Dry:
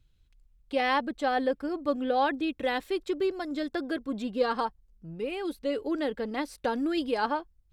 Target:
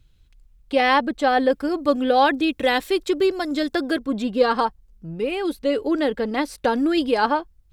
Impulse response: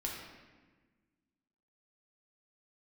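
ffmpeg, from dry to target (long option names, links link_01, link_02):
-filter_complex "[0:a]asettb=1/sr,asplit=3[link_01][link_02][link_03];[link_01]atrim=end=1.504[link_04];[link_02]atrim=start=1.5:end=3.99,asetpts=PTS-STARTPTS,afade=type=in:duration=0.004:curve=qsin,afade=type=out:start_time=2.486:duration=0.004:curve=qsin,highshelf=frequency=3700:gain=6.5[link_05];[link_03]atrim=start=3.986[link_06];[link_04][link_05]acrossfade=duration=0.004:curve1=hsin:curve2=qsin[link_07];[link_07][link_06]acrossfade=duration=0.004:curve1=qsin:curve2=hsin,volume=8.5dB"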